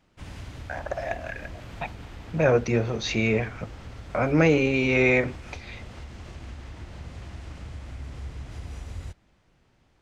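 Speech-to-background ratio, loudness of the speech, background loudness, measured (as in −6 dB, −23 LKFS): 17.5 dB, −24.0 LKFS, −41.5 LKFS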